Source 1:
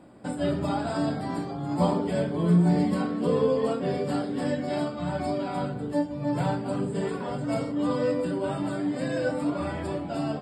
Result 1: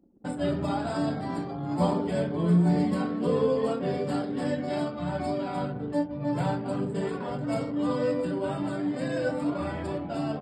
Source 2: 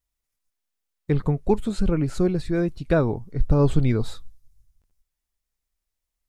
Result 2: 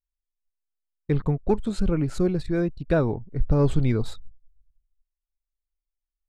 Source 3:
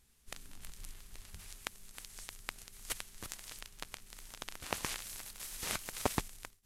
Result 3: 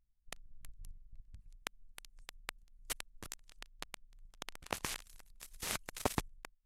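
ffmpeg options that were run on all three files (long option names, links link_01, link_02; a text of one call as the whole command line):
ffmpeg -i in.wav -af "anlmdn=0.158,acontrast=39,volume=-6.5dB" out.wav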